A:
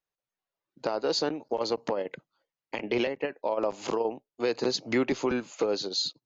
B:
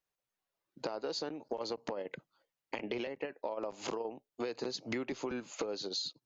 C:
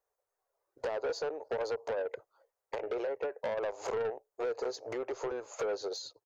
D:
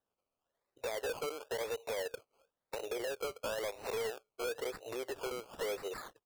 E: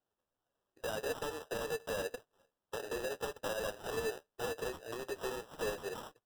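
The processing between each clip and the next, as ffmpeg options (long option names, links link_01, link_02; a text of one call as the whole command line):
ffmpeg -i in.wav -af "acompressor=threshold=-36dB:ratio=6,volume=1dB" out.wav
ffmpeg -i in.wav -af "firequalizer=gain_entry='entry(100,0);entry(170,-27);entry(430,12);entry(2900,-10);entry(6400,0)':delay=0.05:min_phase=1,asoftclip=type=tanh:threshold=-29.5dB" out.wav
ffmpeg -i in.wav -af "acrusher=samples=19:mix=1:aa=0.000001:lfo=1:lforange=11.4:lforate=0.98,volume=-3.5dB" out.wav
ffmpeg -i in.wav -af "flanger=delay=6.3:depth=7.3:regen=35:speed=1.8:shape=triangular,acrusher=samples=20:mix=1:aa=0.000001,volume=3.5dB" out.wav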